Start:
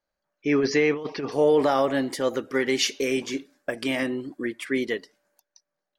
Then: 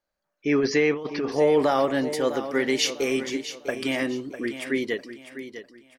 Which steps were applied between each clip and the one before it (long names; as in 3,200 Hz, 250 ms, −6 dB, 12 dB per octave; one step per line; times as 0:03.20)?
repeating echo 651 ms, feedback 31%, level −11.5 dB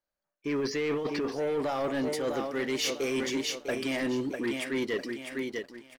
reversed playback
downward compressor 10 to 1, threshold −29 dBFS, peak gain reduction 13.5 dB
reversed playback
leveller curve on the samples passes 2
level −3 dB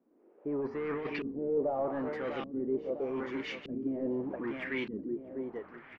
echo with shifted repeats 182 ms, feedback 49%, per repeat −53 Hz, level −17.5 dB
noise in a band 280–2,700 Hz −53 dBFS
auto-filter low-pass saw up 0.82 Hz 210–3,000 Hz
level −6 dB